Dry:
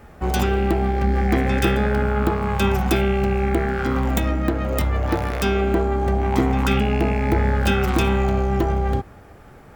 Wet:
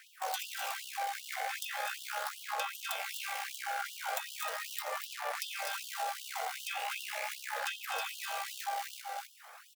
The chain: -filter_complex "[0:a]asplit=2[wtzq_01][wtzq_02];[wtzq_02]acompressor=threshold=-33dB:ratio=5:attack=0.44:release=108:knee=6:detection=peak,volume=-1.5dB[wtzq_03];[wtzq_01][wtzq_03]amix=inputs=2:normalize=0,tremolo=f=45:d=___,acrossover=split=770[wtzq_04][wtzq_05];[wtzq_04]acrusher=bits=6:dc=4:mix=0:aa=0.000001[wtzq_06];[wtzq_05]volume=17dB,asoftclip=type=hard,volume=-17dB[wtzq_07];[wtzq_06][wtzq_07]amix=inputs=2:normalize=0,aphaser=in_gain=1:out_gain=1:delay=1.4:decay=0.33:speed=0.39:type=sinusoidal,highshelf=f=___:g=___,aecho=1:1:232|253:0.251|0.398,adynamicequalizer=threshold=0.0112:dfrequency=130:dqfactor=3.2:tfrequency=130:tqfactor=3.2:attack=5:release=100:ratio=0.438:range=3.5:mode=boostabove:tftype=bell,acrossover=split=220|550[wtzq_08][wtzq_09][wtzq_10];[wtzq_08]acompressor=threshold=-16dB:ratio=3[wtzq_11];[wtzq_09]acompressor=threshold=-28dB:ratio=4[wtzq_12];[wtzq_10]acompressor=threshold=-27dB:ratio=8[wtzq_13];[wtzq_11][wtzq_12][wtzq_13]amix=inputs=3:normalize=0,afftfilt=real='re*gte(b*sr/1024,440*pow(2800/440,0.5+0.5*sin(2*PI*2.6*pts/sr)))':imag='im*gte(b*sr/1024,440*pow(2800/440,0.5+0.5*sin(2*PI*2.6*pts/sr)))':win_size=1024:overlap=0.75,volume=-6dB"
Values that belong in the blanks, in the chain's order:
0.333, 4.9k, 5